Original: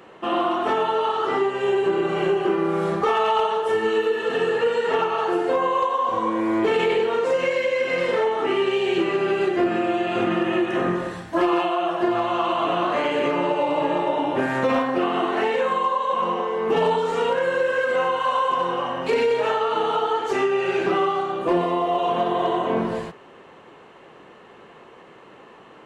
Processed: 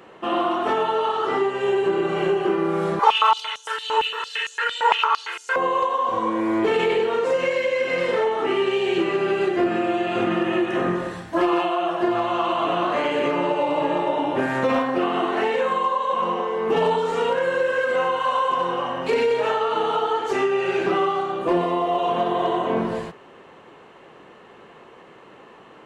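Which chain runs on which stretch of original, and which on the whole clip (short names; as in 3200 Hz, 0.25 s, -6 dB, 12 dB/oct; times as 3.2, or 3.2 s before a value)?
2.99–5.56 comb 2 ms, depth 96% + stepped high-pass 8.8 Hz 890–6300 Hz
whole clip: dry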